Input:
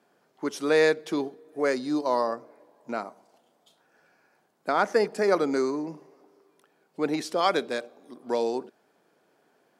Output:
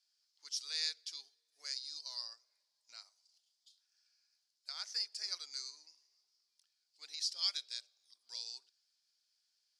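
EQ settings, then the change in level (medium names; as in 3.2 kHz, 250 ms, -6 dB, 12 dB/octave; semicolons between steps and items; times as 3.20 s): ladder band-pass 5.3 kHz, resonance 65%; +7.0 dB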